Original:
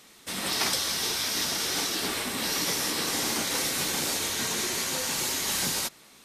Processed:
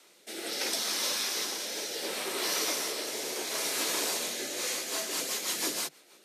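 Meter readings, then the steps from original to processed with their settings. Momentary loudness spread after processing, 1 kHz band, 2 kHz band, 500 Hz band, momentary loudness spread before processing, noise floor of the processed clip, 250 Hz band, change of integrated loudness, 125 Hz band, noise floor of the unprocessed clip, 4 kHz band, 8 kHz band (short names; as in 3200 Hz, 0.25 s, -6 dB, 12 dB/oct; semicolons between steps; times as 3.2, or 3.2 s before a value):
5 LU, -5.0 dB, -4.5 dB, -0.5 dB, 3 LU, -60 dBFS, -6.5 dB, -4.0 dB, -17.0 dB, -54 dBFS, -4.0 dB, -4.0 dB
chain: rotary speaker horn 0.7 Hz, later 6.3 Hz, at 4.3; frequency shift +140 Hz; gain -1.5 dB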